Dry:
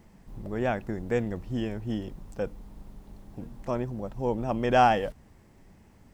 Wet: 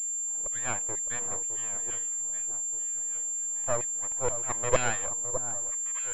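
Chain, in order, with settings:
mains-hum notches 60/120/180/240/300/360/420/480 Hz
auto-filter high-pass saw down 2.1 Hz 450–2,300 Hz
0:02.14–0:02.73: formant filter a
half-wave rectification
on a send: delay that swaps between a low-pass and a high-pass 612 ms, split 1,200 Hz, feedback 64%, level −9.5 dB
on the sum: switching amplifier with a slow clock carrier 7,300 Hz

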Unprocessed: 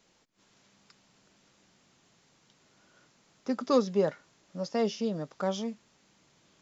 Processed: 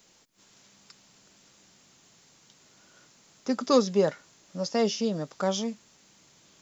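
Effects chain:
high-shelf EQ 5,500 Hz +12 dB
level +3 dB

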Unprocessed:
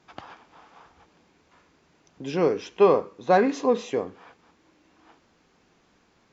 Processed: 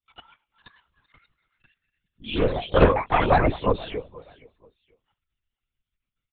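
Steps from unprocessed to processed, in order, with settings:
spectral dynamics exaggerated over time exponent 2
high-shelf EQ 2,100 Hz +9.5 dB
in parallel at +1.5 dB: downward compressor, threshold −30 dBFS, peak gain reduction 16 dB
on the sum: repeating echo 479 ms, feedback 26%, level −21.5 dB
delay with pitch and tempo change per echo 520 ms, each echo +4 semitones, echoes 3
linear-prediction vocoder at 8 kHz whisper
highs frequency-modulated by the lows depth 0.21 ms
level −1 dB

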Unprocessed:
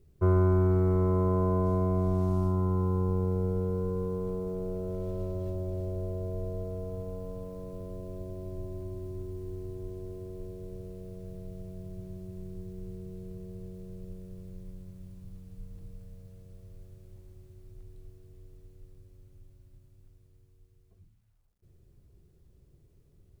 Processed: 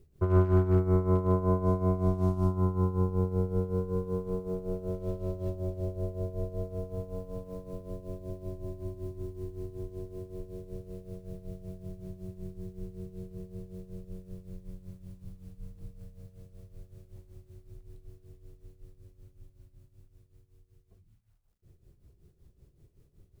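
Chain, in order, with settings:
hard clipping −17 dBFS, distortion −34 dB
amplitude tremolo 5.3 Hz, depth 74%
level +3 dB

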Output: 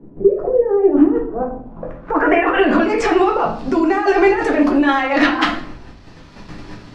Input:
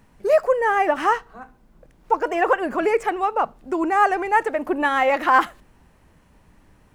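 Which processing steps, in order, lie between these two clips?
parametric band 270 Hz +3 dB 0.63 octaves
noise gate −51 dBFS, range −16 dB
bit reduction 12 bits
compressor whose output falls as the input rises −26 dBFS, ratio −1
low-pass filter sweep 390 Hz → 4,700 Hz, 0:01.19–0:02.87
rectangular room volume 49 cubic metres, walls mixed, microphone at 0.69 metres
multiband upward and downward compressor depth 40%
level +5.5 dB

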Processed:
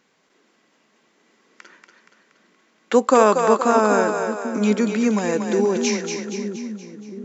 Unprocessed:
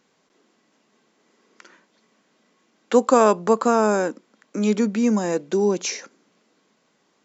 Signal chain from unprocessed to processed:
parametric band 2,000 Hz +4.5 dB 1.3 octaves
on a send: echo with a time of its own for lows and highs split 330 Hz, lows 793 ms, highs 236 ms, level −5.5 dB

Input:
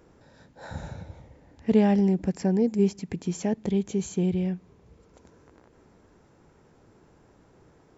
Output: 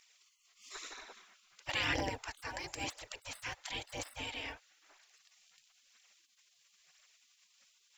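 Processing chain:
phase shifter 1 Hz, delay 3.6 ms, feedback 45%
gate on every frequency bin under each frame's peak −30 dB weak
level +8.5 dB

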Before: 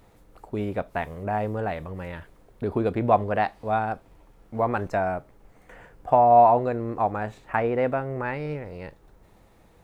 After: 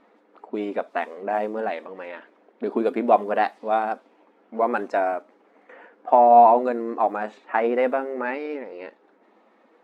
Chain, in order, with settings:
spectral magnitudes quantised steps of 15 dB
linear-phase brick-wall high-pass 210 Hz
low-pass that shuts in the quiet parts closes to 2,500 Hz, open at −21 dBFS
level +3 dB

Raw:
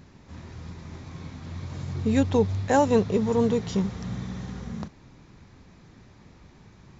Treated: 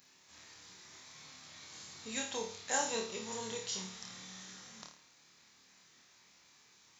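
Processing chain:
first difference
flutter between parallel walls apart 4.6 metres, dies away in 0.45 s
level +3.5 dB

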